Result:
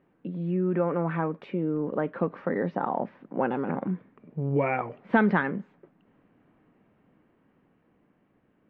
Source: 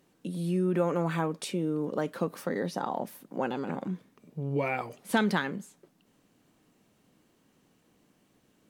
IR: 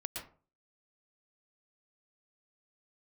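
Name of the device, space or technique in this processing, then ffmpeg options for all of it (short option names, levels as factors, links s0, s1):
action camera in a waterproof case: -af "lowpass=f=2200:w=0.5412,lowpass=f=2200:w=1.3066,dynaudnorm=f=390:g=11:m=1.5,volume=1.12" -ar 32000 -c:a aac -b:a 64k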